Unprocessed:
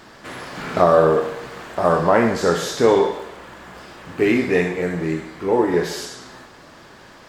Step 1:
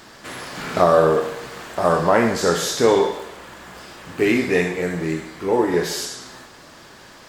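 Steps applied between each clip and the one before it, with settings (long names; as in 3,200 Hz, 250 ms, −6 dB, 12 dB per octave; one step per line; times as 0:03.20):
high-shelf EQ 3,800 Hz +8 dB
level −1 dB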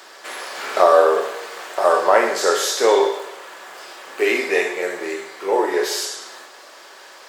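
high-pass filter 410 Hz 24 dB per octave
on a send at −9 dB: convolution reverb RT60 0.45 s, pre-delay 5 ms
on the sum: level +2 dB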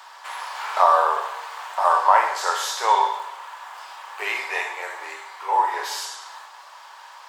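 high-pass with resonance 930 Hz, resonance Q 4.9
parametric band 3,100 Hz +3 dB 0.73 octaves
level −7 dB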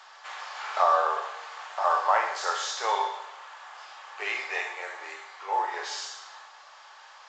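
notch filter 970 Hz, Q 7.1
level −4.5 dB
mu-law 128 kbit/s 16,000 Hz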